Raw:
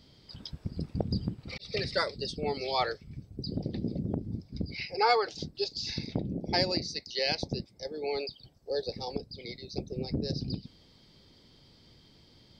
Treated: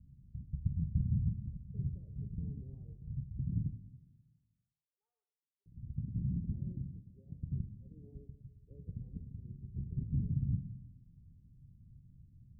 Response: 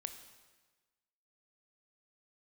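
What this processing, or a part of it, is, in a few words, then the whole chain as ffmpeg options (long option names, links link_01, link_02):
club heard from the street: -filter_complex "[0:a]asettb=1/sr,asplit=3[link_01][link_02][link_03];[link_01]atrim=end=3.694[link_04];[link_02]atrim=start=3.69:end=5.66,asetpts=PTS-STARTPTS,afade=type=in:duration=0.004:curve=qsin,afade=type=out:start_time=1.966:duration=0.004:curve=qsin,highpass=frequency=1400:width=0.5412,highpass=frequency=1400:width=1.3066[link_05];[link_03]atrim=start=5.656[link_06];[link_04][link_05]acrossfade=duration=0.004:curve1=hsin:curve2=qsin[link_07];[link_07][link_06]acrossfade=duration=0.004:curve1=qsin:curve2=hsin,alimiter=limit=-23dB:level=0:latency=1,lowpass=frequency=160:width=0.5412,lowpass=frequency=160:width=1.3066[link_08];[1:a]atrim=start_sample=2205[link_09];[link_08][link_09]afir=irnorm=-1:irlink=0,volume=7.5dB"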